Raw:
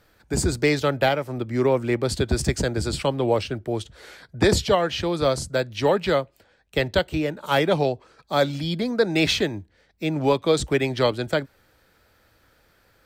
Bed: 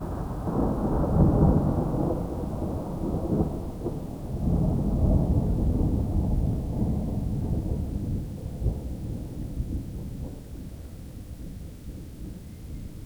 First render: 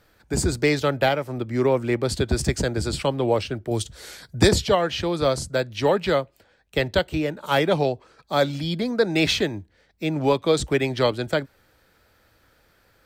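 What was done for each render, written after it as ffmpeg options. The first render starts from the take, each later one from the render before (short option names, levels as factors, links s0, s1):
-filter_complex "[0:a]asettb=1/sr,asplit=3[s0][s1][s2];[s0]atrim=end=3.714[s3];[s1]atrim=start=3.71:end=4.49,asetpts=PTS-STARTPTS,afade=t=in:d=0.004:c=qsin,afade=t=out:st=0.776:d=0.004:c=qsin,bass=f=250:g=5,treble=f=4000:g=12[s4];[s2]atrim=start=4.486[s5];[s3][s4]acrossfade=d=0.004:c1=hsin:c2=qsin[s6];[s6][s5]acrossfade=d=0.004:c1=qsin:c2=hsin"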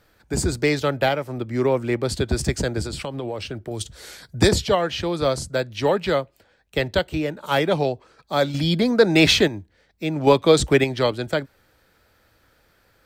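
-filter_complex "[0:a]asettb=1/sr,asplit=3[s0][s1][s2];[s0]atrim=end=2.824[s3];[s1]atrim=start=2.82:end=3.81,asetpts=PTS-STARTPTS,afade=t=in:d=0.004:c=qsin,afade=t=out:st=0.986:d=0.004:c=qsin,acompressor=threshold=0.0562:ratio=6:attack=3.2:release=140:knee=1:detection=peak[s4];[s2]atrim=start=3.806[s5];[s3][s4]acrossfade=d=0.004:c1=hsin:c2=qsin[s6];[s6][s5]acrossfade=d=0.004:c1=qsin:c2=hsin,asettb=1/sr,asplit=3[s7][s8][s9];[s7]atrim=end=8.544[s10];[s8]atrim=start=8.54:end=9.48,asetpts=PTS-STARTPTS,afade=t=in:d=0.004:c=qsin,afade=t=out:st=0.936:d=0.004:c=qsin,acontrast=47[s11];[s9]atrim=start=9.476[s12];[s10][s11]acrossfade=d=0.004:c1=hsin:c2=qsin[s13];[s13][s12]acrossfade=d=0.004:c1=qsin:c2=hsin,asplit=3[s14][s15][s16];[s14]atrim=end=10.272[s17];[s15]atrim=start=10.268:end=10.842,asetpts=PTS-STARTPTS,volume=1.78[s18];[s16]atrim=start=10.838[s19];[s17][s18]acrossfade=d=0.004:c1=hsin:c2=hsin[s20];[s20][s19]acrossfade=d=0.004:c1=hsin:c2=hsin"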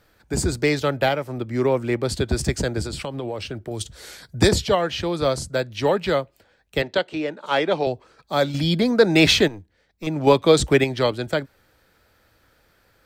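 -filter_complex "[0:a]asettb=1/sr,asplit=3[s0][s1][s2];[s0]atrim=end=6.824[s3];[s1]atrim=start=6.82:end=7.87,asetpts=PTS-STARTPTS,afade=t=in:d=0.004:c=qsin,afade=t=out:st=1.046:d=0.004:c=qsin,highpass=250,lowpass=5700[s4];[s2]atrim=start=7.866[s5];[s3][s4]acrossfade=d=0.004:c1=hsin:c2=qsin[s6];[s6][s5]acrossfade=d=0.004:c1=qsin:c2=hsin,asettb=1/sr,asplit=3[s7][s8][s9];[s7]atrim=end=9.484[s10];[s8]atrim=start=9.48:end=10.07,asetpts=PTS-STARTPTS,afade=t=in:d=0.004:c=qsin,afade=t=out:st=0.586:d=0.004:c=qsin,aeval=exprs='(tanh(17.8*val(0)+0.7)-tanh(0.7))/17.8':c=same[s11];[s9]atrim=start=10.066[s12];[s10][s11]acrossfade=d=0.004:c1=hsin:c2=qsin[s13];[s13][s12]acrossfade=d=0.004:c1=qsin:c2=hsin"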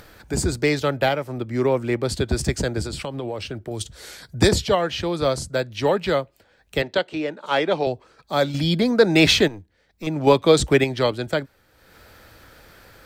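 -af "acompressor=mode=upward:threshold=0.0158:ratio=2.5"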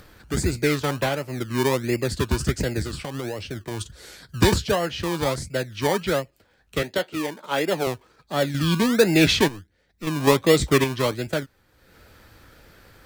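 -filter_complex "[0:a]acrossover=split=530[s0][s1];[s0]acrusher=samples=26:mix=1:aa=0.000001:lfo=1:lforange=15.6:lforate=1.4[s2];[s1]flanger=delay=5.5:depth=7.8:regen=-49:speed=0.51:shape=sinusoidal[s3];[s2][s3]amix=inputs=2:normalize=0"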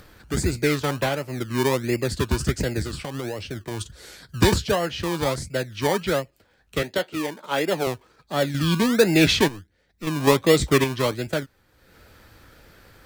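-af anull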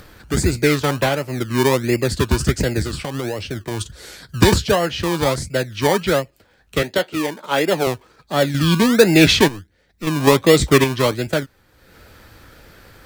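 -af "volume=1.88,alimiter=limit=0.891:level=0:latency=1"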